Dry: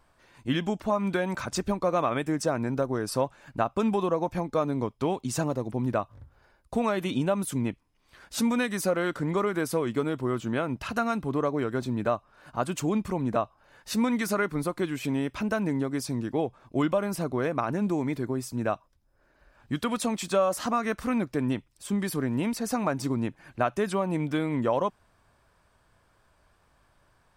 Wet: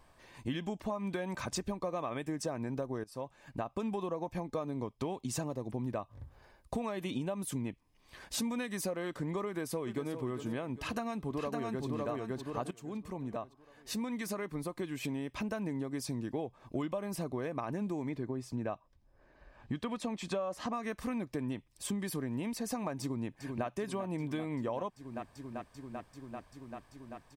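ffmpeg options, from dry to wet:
ffmpeg -i in.wav -filter_complex "[0:a]asplit=2[link_01][link_02];[link_02]afade=type=in:start_time=9.47:duration=0.01,afade=type=out:start_time=10.16:duration=0.01,aecho=0:1:400|800|1200:0.281838|0.0845515|0.0253654[link_03];[link_01][link_03]amix=inputs=2:normalize=0,asplit=2[link_04][link_05];[link_05]afade=type=in:start_time=10.74:duration=0.01,afade=type=out:start_time=11.85:duration=0.01,aecho=0:1:560|1120|1680|2240|2800:0.891251|0.311938|0.109178|0.0382124|0.0133743[link_06];[link_04][link_06]amix=inputs=2:normalize=0,asettb=1/sr,asplit=3[link_07][link_08][link_09];[link_07]atrim=end=18.094[link_10];[link_08]atrim=start=18.09:end=20.73,asetpts=PTS-STARTPTS,afade=type=in:duration=0.004:curve=qsin,afade=type=out:start_time=2.636:duration=0.004:curve=qsin,aemphasis=mode=reproduction:type=50fm[link_11];[link_09]atrim=start=20.726[link_12];[link_10][link_11]acrossfade=duration=0.004:curve1=hsin:curve2=qsin[link_13];[link_13][link_12]acrossfade=duration=0.004:curve1=qsin:curve2=hsin,asplit=2[link_14][link_15];[link_15]afade=type=in:start_time=23.01:duration=0.01,afade=type=out:start_time=23.66:duration=0.01,aecho=0:1:390|780|1170|1560|1950|2340|2730|3120|3510|3900|4290|4680:0.237137|0.201567|0.171332|0.145632|0.123787|0.105219|0.0894362|0.0760208|0.0646177|0.054925|0.0466863|0.0396833[link_16];[link_14][link_16]amix=inputs=2:normalize=0,asplit=3[link_17][link_18][link_19];[link_17]atrim=end=3.04,asetpts=PTS-STARTPTS,afade=type=out:start_time=3.036:duration=0.004:curve=hsin:silence=0.0891251[link_20];[link_18]atrim=start=3.04:end=12.71,asetpts=PTS-STARTPTS,afade=type=in:duration=0.99:silence=0.0891251,afade=type=out:start_time=9.666:duration=0.004:curve=hsin:silence=0.125893[link_21];[link_19]atrim=start=12.71,asetpts=PTS-STARTPTS,afade=type=in:duration=3.37:silence=0.125893[link_22];[link_20][link_21][link_22]concat=n=3:v=0:a=1,bandreject=frequency=1400:width=5.6,acompressor=threshold=-37dB:ratio=4,volume=2dB" out.wav

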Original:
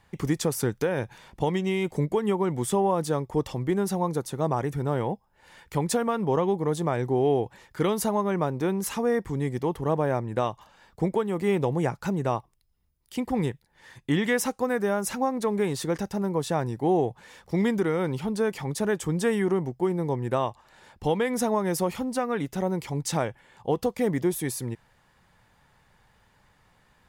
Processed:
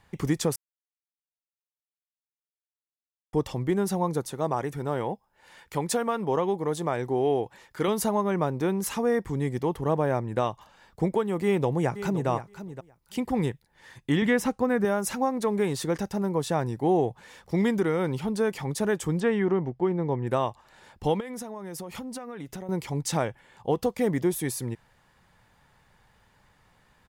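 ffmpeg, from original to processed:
ffmpeg -i in.wav -filter_complex "[0:a]asettb=1/sr,asplit=3[link_01][link_02][link_03];[link_01]atrim=end=4.324[link_04];[link_02]atrim=start=4.32:end=7.88,asetpts=PTS-STARTPTS,afade=type=in:duration=0.004:curve=qsin,afade=type=out:start_time=3.556:duration=0.004:curve=qsin,lowshelf=frequency=200:gain=-8[link_05];[link_03]atrim=start=7.876[link_06];[link_04][link_05]acrossfade=duration=0.004:curve1=hsin:curve2=qsin[link_07];[link_07][link_06]acrossfade=duration=0.004:curve1=qsin:curve2=hsin,asplit=2[link_08][link_09];[link_09]afade=type=in:start_time=11.43:duration=0.01,afade=type=out:start_time=12.28:duration=0.01,aecho=0:1:520|1040:0.251189|0.0251189[link_10];[link_08][link_10]amix=inputs=2:normalize=0,asettb=1/sr,asplit=3[link_11][link_12][link_13];[link_11]atrim=end=14.224[link_14];[link_12]atrim=start=14.22:end=14.85,asetpts=PTS-STARTPTS,afade=type=in:duration=0.004:curve=qsin,afade=type=out:start_time=0.626:duration=0.004:curve=qsin,bass=frequency=250:gain=8,treble=frequency=4000:gain=-7[link_15];[link_13]atrim=start=14.846[link_16];[link_14][link_15]acrossfade=duration=0.004:curve1=hsin:curve2=qsin[link_17];[link_17][link_16]acrossfade=duration=0.004:curve1=qsin:curve2=hsin,asettb=1/sr,asplit=3[link_18][link_19][link_20];[link_18]atrim=end=19.204[link_21];[link_19]atrim=start=19.2:end=20.27,asetpts=PTS-STARTPTS,afade=type=in:duration=0.004:curve=qsin,afade=type=out:start_time=1.066:duration=0.004:curve=qsin,lowpass=3300[link_22];[link_20]atrim=start=20.266[link_23];[link_21][link_22]acrossfade=duration=0.004:curve1=hsin:curve2=qsin[link_24];[link_24][link_23]acrossfade=duration=0.004:curve1=qsin:curve2=hsin,asettb=1/sr,asplit=3[link_25][link_26][link_27];[link_25]atrim=end=21.204[link_28];[link_26]atrim=start=21.2:end=22.69,asetpts=PTS-STARTPTS,afade=type=in:duration=0.004:curve=qsin,afade=type=out:start_time=1.486:duration=0.004:curve=qsin,acompressor=threshold=-33dB:ratio=12:attack=3.2:release=140:knee=1:detection=peak[link_29];[link_27]atrim=start=22.686[link_30];[link_28][link_29]acrossfade=duration=0.004:curve1=hsin:curve2=qsin[link_31];[link_31][link_30]acrossfade=duration=0.004:curve1=qsin:curve2=hsin,asplit=3[link_32][link_33][link_34];[link_32]atrim=end=0.56,asetpts=PTS-STARTPTS,afade=type=out:start_time=0.556:duration=0.004:curve=hsin[link_35];[link_33]atrim=start=0.56:end=3.33,asetpts=PTS-STARTPTS,volume=0[link_36];[link_34]atrim=start=3.33,asetpts=PTS-STARTPTS,afade=type=in:duration=0.004:curve=hsin[link_37];[link_35][link_36][link_37]concat=n=3:v=0:a=1" out.wav

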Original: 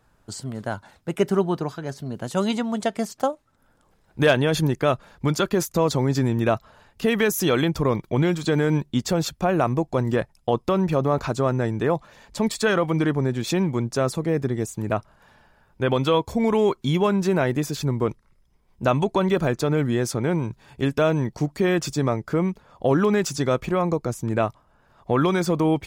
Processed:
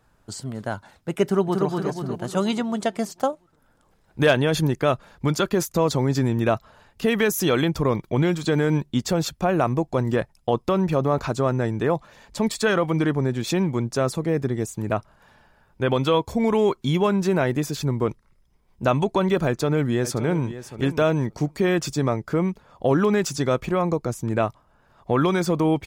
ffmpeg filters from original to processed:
ffmpeg -i in.wav -filter_complex "[0:a]asplit=2[link_01][link_02];[link_02]afade=type=in:start_time=1.23:duration=0.01,afade=type=out:start_time=1.67:duration=0.01,aecho=0:1:240|480|720|960|1200|1440|1680|1920:0.707946|0.38937|0.214154|0.117784|0.0647815|0.0356298|0.0195964|0.010778[link_03];[link_01][link_03]amix=inputs=2:normalize=0,asplit=2[link_04][link_05];[link_05]afade=type=in:start_time=19.47:duration=0.01,afade=type=out:start_time=20.46:duration=0.01,aecho=0:1:570|1140:0.223872|0.0223872[link_06];[link_04][link_06]amix=inputs=2:normalize=0" out.wav

